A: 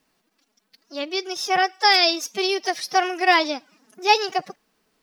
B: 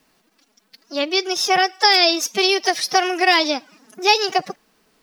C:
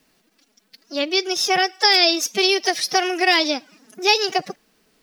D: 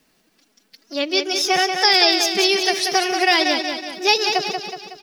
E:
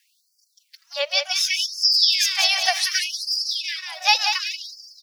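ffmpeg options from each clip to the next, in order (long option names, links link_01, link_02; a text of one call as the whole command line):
ffmpeg -i in.wav -filter_complex "[0:a]acrossover=split=540|2700[link_01][link_02][link_03];[link_01]acompressor=threshold=-30dB:ratio=4[link_04];[link_02]acompressor=threshold=-25dB:ratio=4[link_05];[link_03]acompressor=threshold=-22dB:ratio=4[link_06];[link_04][link_05][link_06]amix=inputs=3:normalize=0,volume=7.5dB" out.wav
ffmpeg -i in.wav -af "equalizer=frequency=1000:width=1.4:gain=-5" out.wav
ffmpeg -i in.wav -af "aecho=1:1:185|370|555|740|925|1110:0.501|0.251|0.125|0.0626|0.0313|0.0157" out.wav
ffmpeg -i in.wav -af "afftfilt=real='re*gte(b*sr/1024,490*pow(4600/490,0.5+0.5*sin(2*PI*0.67*pts/sr)))':imag='im*gte(b*sr/1024,490*pow(4600/490,0.5+0.5*sin(2*PI*0.67*pts/sr)))':win_size=1024:overlap=0.75" out.wav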